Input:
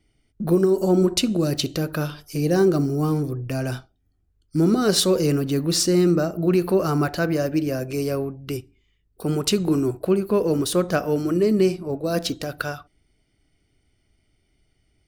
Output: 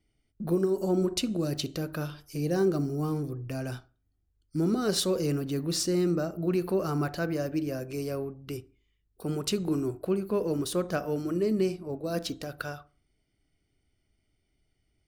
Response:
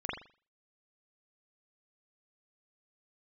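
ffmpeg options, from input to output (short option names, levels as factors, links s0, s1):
-filter_complex "[0:a]asplit=2[s0][s1];[1:a]atrim=start_sample=2205,lowpass=1600[s2];[s1][s2]afir=irnorm=-1:irlink=0,volume=0.0891[s3];[s0][s3]amix=inputs=2:normalize=0,volume=0.376"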